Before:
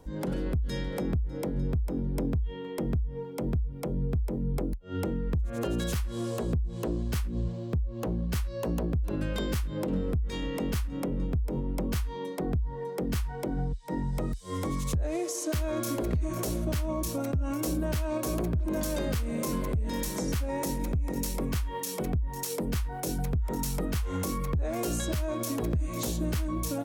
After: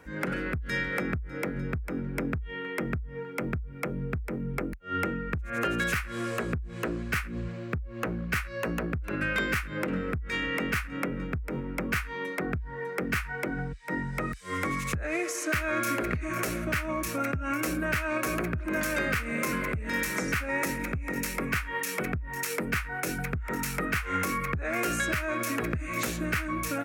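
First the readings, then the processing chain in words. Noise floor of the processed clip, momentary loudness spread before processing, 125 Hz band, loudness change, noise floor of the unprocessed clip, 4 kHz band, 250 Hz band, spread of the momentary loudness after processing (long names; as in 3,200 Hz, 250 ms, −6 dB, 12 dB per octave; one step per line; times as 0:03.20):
−39 dBFS, 3 LU, −4.0 dB, +0.5 dB, −38 dBFS, +1.5 dB, −1.0 dB, 6 LU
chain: high-pass filter 120 Hz 6 dB per octave
flat-topped bell 1,800 Hz +15.5 dB 1.3 octaves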